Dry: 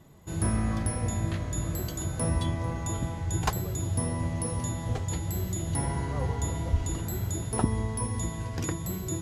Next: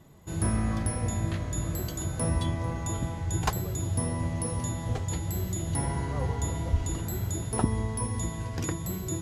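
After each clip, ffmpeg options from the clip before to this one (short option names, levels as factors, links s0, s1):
-af anull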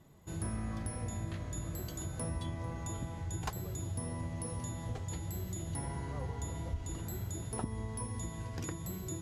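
-af "acompressor=threshold=0.0282:ratio=2,volume=0.501"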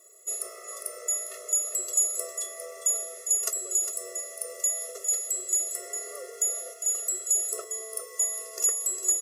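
-filter_complex "[0:a]aexciter=amount=8.7:drive=4.6:freq=5600,asplit=2[s0][s1];[s1]aecho=0:1:404:0.335[s2];[s0][s2]amix=inputs=2:normalize=0,afftfilt=real='re*eq(mod(floor(b*sr/1024/360),2),1)':imag='im*eq(mod(floor(b*sr/1024/360),2),1)':win_size=1024:overlap=0.75,volume=2"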